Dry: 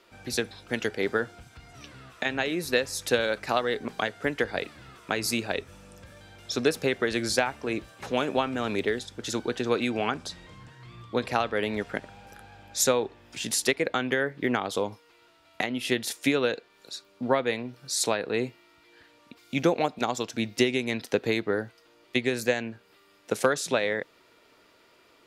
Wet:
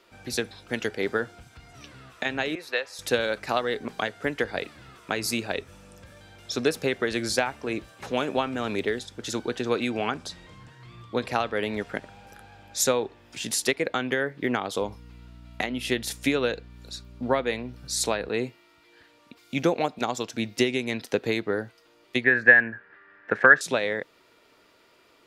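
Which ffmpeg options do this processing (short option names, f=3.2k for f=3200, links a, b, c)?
-filter_complex "[0:a]asettb=1/sr,asplit=3[a][b][c];[a]atrim=end=2.554[d];[b]atrim=start=2.55:end=2.99,asetpts=PTS-STARTPTS,afade=t=in:d=0.004:c=qsin,afade=t=out:st=0.436:d=0.004:c=qsin,acrossover=split=490 4100:gain=0.0708 1 0.2[e][f][g];[e][f][g]amix=inputs=3:normalize=0[h];[c]atrim=start=2.986[i];[d][h]acrossfade=d=0.004:c1=hsin:c2=qsin[j];[j][i]acrossfade=d=0.004:c1=qsin:c2=hsin,asettb=1/sr,asplit=3[k][l][m];[k]atrim=end=14.814[n];[l]atrim=start=14.81:end=18.29,asetpts=PTS-STARTPTS,afade=t=in:d=0.004:c=qsin,afade=t=out:st=3.476:d=0.004:c=qsin,aeval=exprs='val(0)+0.00562*(sin(2*PI*60*n/s)+sin(2*PI*2*60*n/s)/2+sin(2*PI*3*60*n/s)/3+sin(2*PI*4*60*n/s)/4+sin(2*PI*5*60*n/s)/5)':c=same[o];[m]atrim=start=18.286[p];[n][o]acrossfade=d=0.004:c1=hsin:c2=qsin[q];[q][p]acrossfade=d=0.004:c1=qsin:c2=hsin,asettb=1/sr,asplit=3[r][s][t];[r]atrim=end=22.244[u];[s]atrim=start=22.24:end=23.61,asetpts=PTS-STARTPTS,afade=t=in:d=0.004:c=qsin,afade=t=out:st=1.366:d=0.004:c=qsin,lowpass=f=1.7k:t=q:w=12[v];[t]atrim=start=23.606[w];[u][v]acrossfade=d=0.004:c1=hsin:c2=qsin[x];[x][w]acrossfade=d=0.004:c1=qsin:c2=hsin"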